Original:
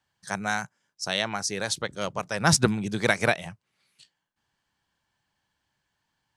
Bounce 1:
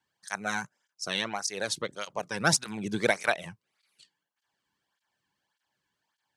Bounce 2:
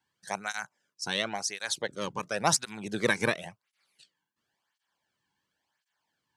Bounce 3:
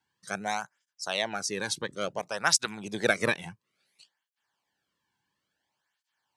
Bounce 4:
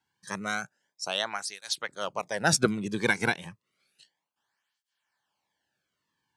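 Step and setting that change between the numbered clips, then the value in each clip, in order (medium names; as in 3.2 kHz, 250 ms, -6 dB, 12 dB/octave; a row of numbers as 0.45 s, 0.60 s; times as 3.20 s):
cancelling through-zero flanger, nulls at: 1.7 Hz, 0.94 Hz, 0.58 Hz, 0.31 Hz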